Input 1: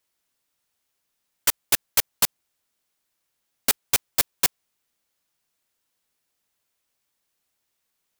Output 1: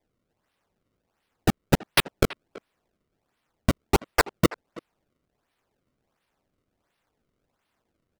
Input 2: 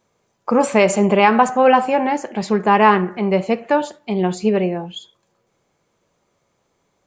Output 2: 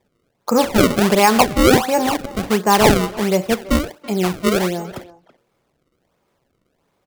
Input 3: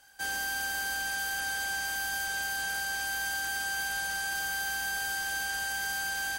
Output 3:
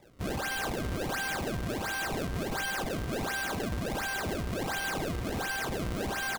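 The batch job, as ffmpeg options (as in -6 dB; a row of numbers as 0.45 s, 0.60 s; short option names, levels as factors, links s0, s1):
-filter_complex "[0:a]acrusher=samples=30:mix=1:aa=0.000001:lfo=1:lforange=48:lforate=1.4,asplit=2[s0][s1];[s1]adelay=330,highpass=300,lowpass=3400,asoftclip=type=hard:threshold=0.316,volume=0.141[s2];[s0][s2]amix=inputs=2:normalize=0"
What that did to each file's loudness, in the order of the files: -3.0 LU, 0.0 LU, -2.0 LU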